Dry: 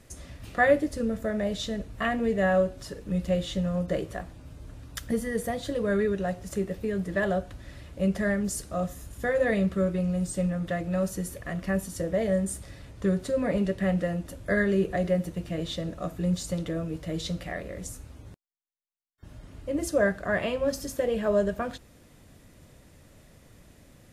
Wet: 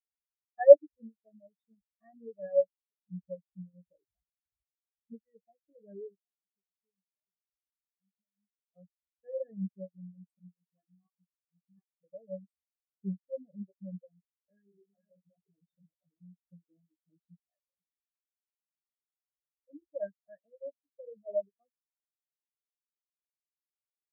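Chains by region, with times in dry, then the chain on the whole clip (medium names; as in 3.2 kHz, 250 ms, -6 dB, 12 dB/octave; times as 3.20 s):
3.86–4.64 s: bass shelf 410 Hz +6 dB + doubling 20 ms -11 dB + compression 1.5:1, threshold -32 dBFS
6.16–8.76 s: compression 5:1, threshold -38 dBFS + comb 4.5 ms, depth 44%
10.39–12.04 s: comb filter that takes the minimum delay 6.2 ms + bass shelf 130 Hz -8 dB + phase dispersion highs, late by 70 ms, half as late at 540 Hz
14.11–16.37 s: chunks repeated in reverse 350 ms, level -3 dB + compression 8:1, threshold -26 dBFS
whole clip: reverb removal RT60 0.69 s; spectral contrast expander 4:1; trim +6 dB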